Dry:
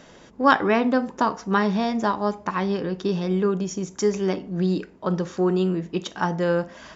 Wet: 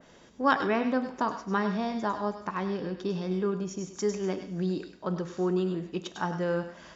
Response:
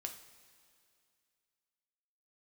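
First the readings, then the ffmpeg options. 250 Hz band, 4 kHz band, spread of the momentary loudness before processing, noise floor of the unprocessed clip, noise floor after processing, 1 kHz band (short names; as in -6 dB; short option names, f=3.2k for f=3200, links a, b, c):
-7.0 dB, -7.0 dB, 7 LU, -49 dBFS, -55 dBFS, -6.5 dB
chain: -filter_complex "[0:a]asplit=2[a][b];[1:a]atrim=start_sample=2205,highshelf=f=2.3k:g=11,adelay=100[c];[b][c]afir=irnorm=-1:irlink=0,volume=-10.5dB[d];[a][d]amix=inputs=2:normalize=0,adynamicequalizer=threshold=0.0112:dfrequency=2500:dqfactor=0.7:tfrequency=2500:tqfactor=0.7:attack=5:release=100:ratio=0.375:range=2:mode=cutabove:tftype=highshelf,volume=-7dB"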